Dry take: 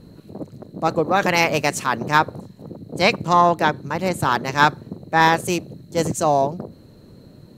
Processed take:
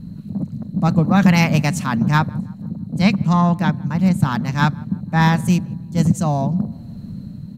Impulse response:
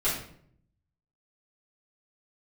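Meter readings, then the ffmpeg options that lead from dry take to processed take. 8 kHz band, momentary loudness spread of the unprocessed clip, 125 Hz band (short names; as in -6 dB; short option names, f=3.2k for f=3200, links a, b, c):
-3.0 dB, 20 LU, +12.0 dB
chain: -filter_complex "[0:a]lowshelf=f=280:t=q:w=3:g=10.5,dynaudnorm=f=140:g=9:m=11.5dB,asplit=2[a][b];[b]adelay=162,lowpass=f=1.6k:p=1,volume=-23dB,asplit=2[c][d];[d]adelay=162,lowpass=f=1.6k:p=1,volume=0.53,asplit=2[e][f];[f]adelay=162,lowpass=f=1.6k:p=1,volume=0.53,asplit=2[g][h];[h]adelay=162,lowpass=f=1.6k:p=1,volume=0.53[i];[c][e][g][i]amix=inputs=4:normalize=0[j];[a][j]amix=inputs=2:normalize=0,volume=-2.5dB"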